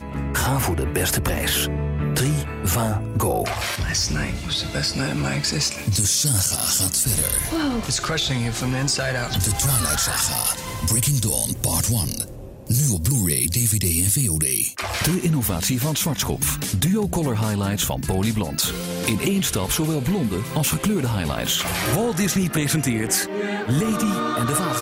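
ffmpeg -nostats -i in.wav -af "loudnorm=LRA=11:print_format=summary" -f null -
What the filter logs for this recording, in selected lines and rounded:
Input Integrated:    -21.2 LUFS
Input True Peak:      -4.9 dBTP
Input LRA:             2.4 LU
Input Threshold:     -31.2 LUFS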